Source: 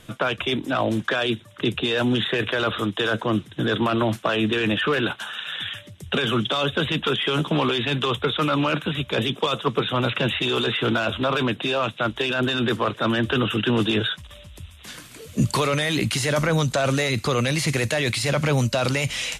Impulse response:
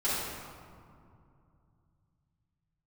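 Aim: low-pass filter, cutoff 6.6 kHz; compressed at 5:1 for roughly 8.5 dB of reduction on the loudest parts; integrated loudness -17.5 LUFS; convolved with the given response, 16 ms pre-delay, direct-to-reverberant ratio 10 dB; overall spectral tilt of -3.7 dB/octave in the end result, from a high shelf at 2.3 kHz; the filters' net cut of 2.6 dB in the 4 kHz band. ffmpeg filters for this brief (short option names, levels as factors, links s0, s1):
-filter_complex "[0:a]lowpass=6600,highshelf=f=2300:g=4.5,equalizer=f=4000:t=o:g=-7,acompressor=threshold=0.0447:ratio=5,asplit=2[s0][s1];[1:a]atrim=start_sample=2205,adelay=16[s2];[s1][s2]afir=irnorm=-1:irlink=0,volume=0.1[s3];[s0][s3]amix=inputs=2:normalize=0,volume=4.22"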